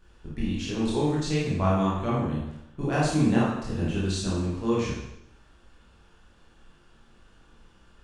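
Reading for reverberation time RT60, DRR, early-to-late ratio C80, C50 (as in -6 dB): 0.85 s, -7.0 dB, 4.0 dB, -0.5 dB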